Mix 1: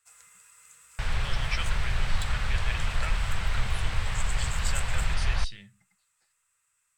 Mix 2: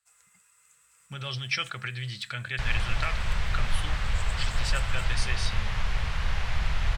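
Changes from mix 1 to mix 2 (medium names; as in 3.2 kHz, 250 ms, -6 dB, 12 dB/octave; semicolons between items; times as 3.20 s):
speech +5.5 dB; first sound -7.0 dB; second sound: entry +1.60 s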